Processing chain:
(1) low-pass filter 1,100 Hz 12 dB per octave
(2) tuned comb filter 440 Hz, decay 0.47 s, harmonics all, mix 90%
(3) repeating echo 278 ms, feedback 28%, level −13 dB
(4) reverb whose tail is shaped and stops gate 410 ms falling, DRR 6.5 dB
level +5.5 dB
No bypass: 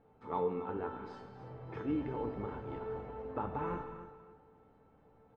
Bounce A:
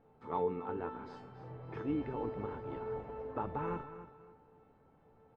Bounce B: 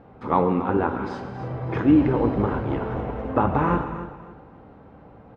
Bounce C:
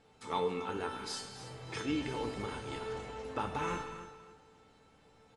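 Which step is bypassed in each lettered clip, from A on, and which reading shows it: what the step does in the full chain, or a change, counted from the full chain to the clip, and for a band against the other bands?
4, echo-to-direct ratio −5.5 dB to −12.5 dB
2, 500 Hz band −5.0 dB
1, 2 kHz band +9.0 dB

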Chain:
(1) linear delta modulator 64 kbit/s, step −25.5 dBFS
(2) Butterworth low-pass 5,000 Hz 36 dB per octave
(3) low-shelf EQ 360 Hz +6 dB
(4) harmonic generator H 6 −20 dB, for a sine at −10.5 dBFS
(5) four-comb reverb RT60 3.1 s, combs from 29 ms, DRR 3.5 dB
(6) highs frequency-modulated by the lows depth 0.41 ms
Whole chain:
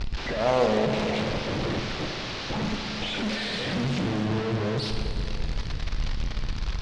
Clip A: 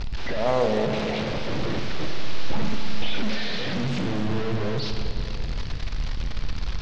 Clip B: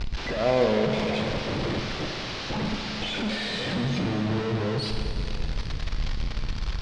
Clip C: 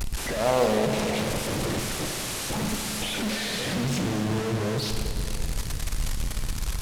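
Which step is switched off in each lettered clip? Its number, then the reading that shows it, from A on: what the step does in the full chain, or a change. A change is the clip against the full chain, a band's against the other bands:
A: 4, change in crest factor −7.0 dB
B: 6, 1 kHz band −1.5 dB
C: 2, 8 kHz band +13.0 dB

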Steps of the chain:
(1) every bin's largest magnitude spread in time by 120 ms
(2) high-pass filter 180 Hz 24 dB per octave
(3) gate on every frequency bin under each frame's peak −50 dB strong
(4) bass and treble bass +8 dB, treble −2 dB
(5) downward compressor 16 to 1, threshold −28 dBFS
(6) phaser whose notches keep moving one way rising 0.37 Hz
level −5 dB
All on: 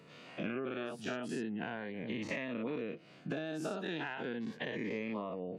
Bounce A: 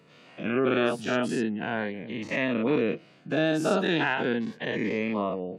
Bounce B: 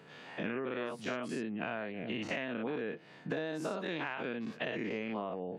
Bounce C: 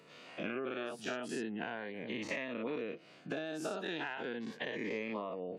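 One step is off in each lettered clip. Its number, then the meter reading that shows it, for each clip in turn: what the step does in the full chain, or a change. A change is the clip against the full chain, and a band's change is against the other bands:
5, average gain reduction 9.5 dB
6, 1 kHz band +2.0 dB
4, 125 Hz band −6.5 dB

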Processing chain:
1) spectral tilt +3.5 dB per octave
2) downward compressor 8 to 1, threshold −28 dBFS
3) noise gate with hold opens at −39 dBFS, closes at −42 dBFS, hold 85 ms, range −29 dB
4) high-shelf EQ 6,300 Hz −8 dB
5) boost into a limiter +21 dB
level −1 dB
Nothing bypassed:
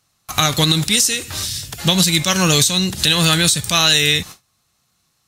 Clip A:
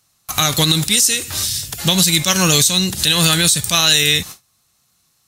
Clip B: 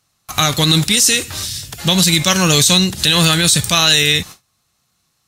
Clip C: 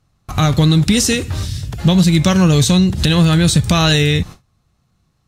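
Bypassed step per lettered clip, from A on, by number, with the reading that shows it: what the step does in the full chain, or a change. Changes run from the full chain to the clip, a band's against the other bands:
4, 8 kHz band +3.5 dB
2, average gain reduction 3.0 dB
1, 125 Hz band +9.5 dB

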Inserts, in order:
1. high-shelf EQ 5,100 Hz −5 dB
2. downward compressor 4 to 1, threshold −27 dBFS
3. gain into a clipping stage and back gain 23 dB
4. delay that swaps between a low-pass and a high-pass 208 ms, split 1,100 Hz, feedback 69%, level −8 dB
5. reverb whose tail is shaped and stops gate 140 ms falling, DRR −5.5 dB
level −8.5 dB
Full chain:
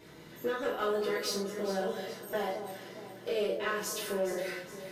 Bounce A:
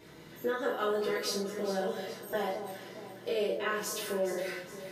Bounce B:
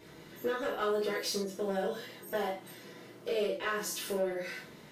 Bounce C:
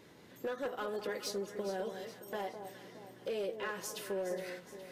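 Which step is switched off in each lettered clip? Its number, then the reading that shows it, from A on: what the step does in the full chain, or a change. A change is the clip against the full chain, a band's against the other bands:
3, distortion level −20 dB
4, change in momentary loudness spread +2 LU
5, change in crest factor −2.0 dB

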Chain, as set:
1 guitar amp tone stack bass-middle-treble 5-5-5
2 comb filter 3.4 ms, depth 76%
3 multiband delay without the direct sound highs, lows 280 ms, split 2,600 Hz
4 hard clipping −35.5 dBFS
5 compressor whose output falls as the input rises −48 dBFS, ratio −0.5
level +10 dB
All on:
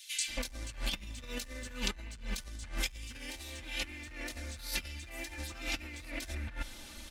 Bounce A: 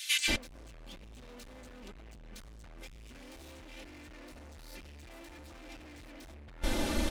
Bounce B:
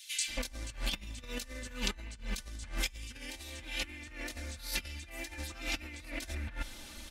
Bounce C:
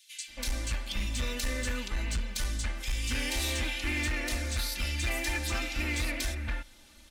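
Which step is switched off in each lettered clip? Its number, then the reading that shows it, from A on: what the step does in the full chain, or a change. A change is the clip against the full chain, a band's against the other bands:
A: 1, 125 Hz band −4.0 dB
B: 4, distortion level −17 dB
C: 5, change in crest factor −15.5 dB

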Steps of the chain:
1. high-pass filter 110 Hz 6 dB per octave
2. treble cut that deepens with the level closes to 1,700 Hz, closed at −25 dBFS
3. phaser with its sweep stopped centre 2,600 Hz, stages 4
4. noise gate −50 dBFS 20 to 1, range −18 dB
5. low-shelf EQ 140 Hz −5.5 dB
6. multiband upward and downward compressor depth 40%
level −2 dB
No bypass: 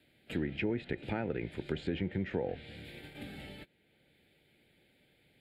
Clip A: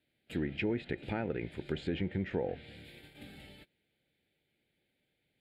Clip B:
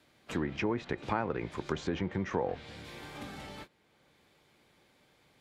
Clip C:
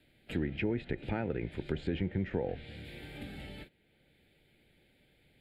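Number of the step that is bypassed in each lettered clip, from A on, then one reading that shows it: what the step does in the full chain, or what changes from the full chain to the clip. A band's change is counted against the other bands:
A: 6, change in momentary loudness spread +4 LU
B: 3, 1 kHz band +8.0 dB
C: 1, 125 Hz band +2.5 dB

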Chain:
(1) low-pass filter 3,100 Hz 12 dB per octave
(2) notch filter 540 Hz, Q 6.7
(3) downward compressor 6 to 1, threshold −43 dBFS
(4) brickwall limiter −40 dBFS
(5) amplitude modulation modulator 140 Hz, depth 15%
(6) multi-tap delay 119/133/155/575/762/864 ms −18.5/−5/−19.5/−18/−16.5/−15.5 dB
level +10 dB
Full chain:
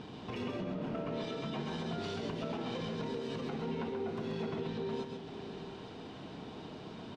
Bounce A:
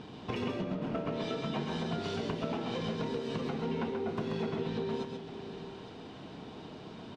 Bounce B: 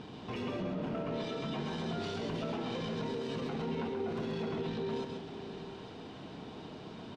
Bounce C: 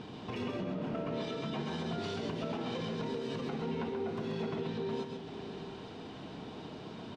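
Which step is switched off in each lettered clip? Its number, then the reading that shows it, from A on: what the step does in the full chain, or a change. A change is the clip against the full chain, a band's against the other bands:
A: 4, average gain reduction 2.0 dB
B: 3, average gain reduction 9.0 dB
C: 5, change in integrated loudness +1.0 LU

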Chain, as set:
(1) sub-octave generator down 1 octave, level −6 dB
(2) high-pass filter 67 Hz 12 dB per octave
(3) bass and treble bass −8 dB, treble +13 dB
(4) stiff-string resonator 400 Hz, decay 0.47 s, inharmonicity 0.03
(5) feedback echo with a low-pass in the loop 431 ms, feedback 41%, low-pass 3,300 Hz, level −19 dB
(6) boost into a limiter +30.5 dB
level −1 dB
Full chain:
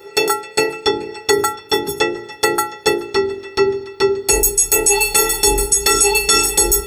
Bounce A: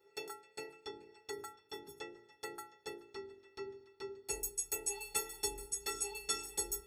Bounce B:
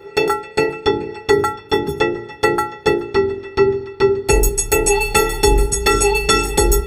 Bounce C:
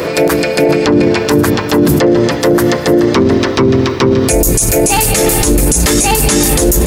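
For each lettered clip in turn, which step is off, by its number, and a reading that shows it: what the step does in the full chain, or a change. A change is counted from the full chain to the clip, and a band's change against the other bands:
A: 6, change in crest factor +8.5 dB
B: 3, change in momentary loudness spread −3 LU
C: 4, 125 Hz band +16.0 dB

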